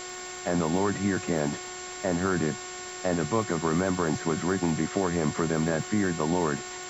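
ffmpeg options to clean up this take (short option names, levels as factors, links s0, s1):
-af "adeclick=t=4,bandreject=f=364.7:t=h:w=4,bandreject=f=729.4:t=h:w=4,bandreject=f=1094.1:t=h:w=4,bandreject=f=1458.8:t=h:w=4,bandreject=f=1823.5:t=h:w=4,bandreject=f=2188.2:t=h:w=4,bandreject=f=7400:w=30,afftdn=nr=30:nf=-39"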